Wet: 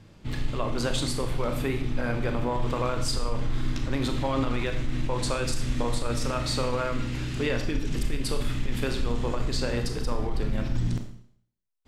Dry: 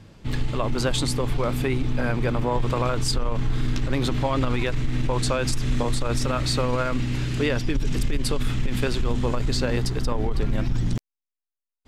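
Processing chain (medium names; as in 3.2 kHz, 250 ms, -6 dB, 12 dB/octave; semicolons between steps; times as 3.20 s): Schroeder reverb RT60 0.62 s, combs from 26 ms, DRR 5 dB; trim -4.5 dB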